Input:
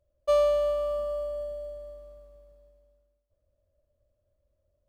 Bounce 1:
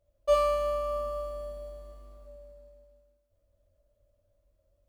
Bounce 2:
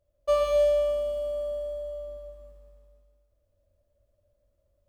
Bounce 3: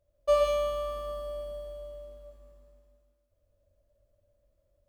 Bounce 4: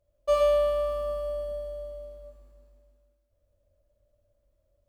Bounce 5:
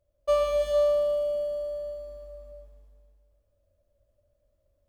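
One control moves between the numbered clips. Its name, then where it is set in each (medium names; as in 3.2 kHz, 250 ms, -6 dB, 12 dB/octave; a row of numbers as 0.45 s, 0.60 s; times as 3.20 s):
gated-style reverb, gate: 90 ms, 330 ms, 220 ms, 150 ms, 490 ms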